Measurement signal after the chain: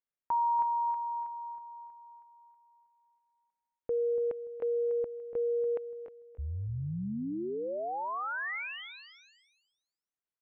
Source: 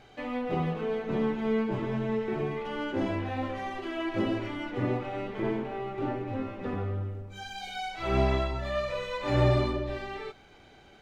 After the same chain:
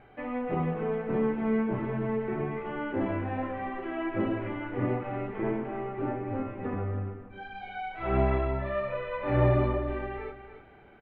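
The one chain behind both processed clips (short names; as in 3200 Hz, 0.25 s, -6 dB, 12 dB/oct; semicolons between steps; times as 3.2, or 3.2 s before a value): LPF 2300 Hz 24 dB/oct; feedback echo 0.289 s, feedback 24%, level -11 dB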